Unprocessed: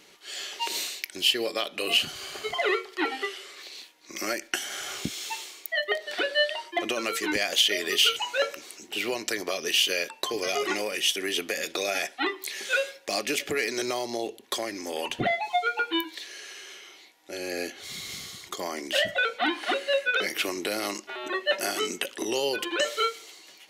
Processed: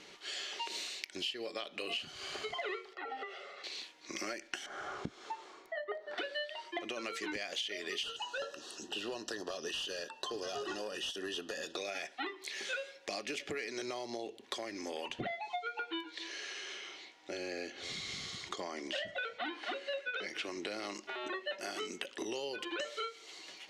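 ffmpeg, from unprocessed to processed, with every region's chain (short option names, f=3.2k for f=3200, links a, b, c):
-filter_complex "[0:a]asettb=1/sr,asplit=3[a][b][c];[a]atrim=end=2.934[d];[b]atrim=start=2.93:end=3.64,asetpts=PTS-STARTPTS,afade=t=in:d=0.004:c=qsin,afade=t=out:st=0.706:d=0.004:c=qsin,aecho=1:1:1.5:0.92,atrim=end_sample=31311,acompressor=threshold=-31dB:ratio=5:attack=3.2:release=140:knee=1:detection=peak,bandpass=f=510:t=q:w=0.64[e];[c]atrim=start=3.636[f];[d][e]acrossfade=d=0.004:c1=hsin:c2=qsin[g];[g][f]acrossfade=d=0.004:c1=qsin:c2=hsin,asettb=1/sr,asplit=3[h][i][j];[h]atrim=end=4.664[k];[i]atrim=start=4.66:end=6.18,asetpts=PTS-STARTPTS,afade=t=in:d=0.004:c=qsin,afade=t=out:st=1.516:d=0.004:c=qsin,lowpass=f=4k:p=1,highshelf=f=1.8k:t=q:w=1.5:g=-11[l];[j]atrim=start=6.176[m];[k][l]acrossfade=d=0.004:c1=hsin:c2=qsin[n];[n][m]acrossfade=d=0.004:c1=qsin:c2=hsin,asettb=1/sr,asplit=3[o][p][q];[o]atrim=end=8.034[r];[p]atrim=start=8.03:end=11.76,asetpts=PTS-STARTPTS,afade=t=in:d=0.004:c=qsin,afade=t=out:st=3.726:d=0.004:c=qsin,volume=24dB,asoftclip=hard,volume=-24dB,asuperstop=centerf=2200:order=8:qfactor=3.4[s];[q]atrim=start=11.756[t];[r][s]acrossfade=d=0.004:c1=hsin:c2=qsin[u];[u][t]acrossfade=d=0.004:c1=qsin:c2=hsin,asettb=1/sr,asplit=3[v][w][x];[v]atrim=end=15.474[y];[w]atrim=start=15.47:end=20.94,asetpts=PTS-STARTPTS,afade=t=in:d=0.004:c=qsin,afade=t=out:st=5.466:d=0.004:c=qsin,lowpass=8.6k,aecho=1:1:271:0.0841,atrim=end_sample=241227[z];[x]atrim=start=20.936[aa];[y][z]acrossfade=d=0.004:c1=hsin:c2=qsin[ab];[ab][aa]acrossfade=d=0.004:c1=qsin:c2=hsin,lowpass=6.2k,acompressor=threshold=-40dB:ratio=4,volume=1dB"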